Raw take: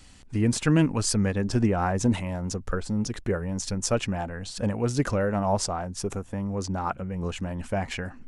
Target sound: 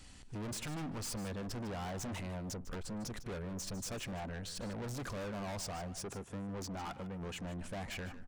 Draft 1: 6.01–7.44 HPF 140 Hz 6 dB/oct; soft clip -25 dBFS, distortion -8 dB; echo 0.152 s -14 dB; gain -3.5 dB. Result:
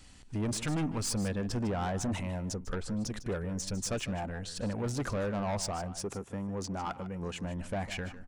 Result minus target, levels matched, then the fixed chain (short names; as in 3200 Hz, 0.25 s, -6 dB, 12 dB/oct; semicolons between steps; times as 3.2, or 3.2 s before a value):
soft clip: distortion -6 dB
6.01–7.44 HPF 140 Hz 6 dB/oct; soft clip -36 dBFS, distortion -3 dB; echo 0.152 s -14 dB; gain -3.5 dB